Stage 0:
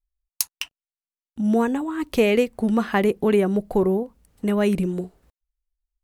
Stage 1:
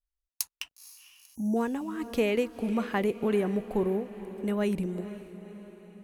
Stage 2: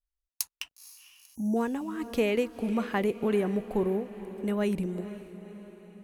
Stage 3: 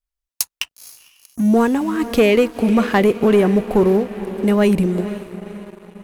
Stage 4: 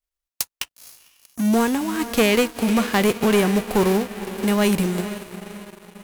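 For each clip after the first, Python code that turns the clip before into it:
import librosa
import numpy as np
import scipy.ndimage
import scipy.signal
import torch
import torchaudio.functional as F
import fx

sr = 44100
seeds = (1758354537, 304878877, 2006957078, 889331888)

y1 = fx.echo_diffused(x, sr, ms=486, feedback_pct=55, wet_db=-14.0)
y1 = fx.spec_erase(y1, sr, start_s=1.35, length_s=0.21, low_hz=1000.0, high_hz=5600.0)
y1 = F.gain(torch.from_numpy(y1), -8.0).numpy()
y2 = y1
y3 = fx.leveller(y2, sr, passes=2)
y3 = F.gain(torch.from_numpy(y3), 6.5).numpy()
y4 = fx.envelope_flatten(y3, sr, power=0.6)
y4 = F.gain(torch.from_numpy(y4), -4.0).numpy()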